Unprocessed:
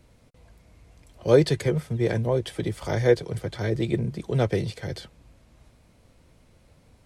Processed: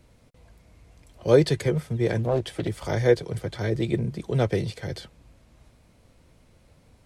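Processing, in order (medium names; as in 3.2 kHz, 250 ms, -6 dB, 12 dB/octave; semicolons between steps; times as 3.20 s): 2.19–2.68 s: loudspeaker Doppler distortion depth 0.4 ms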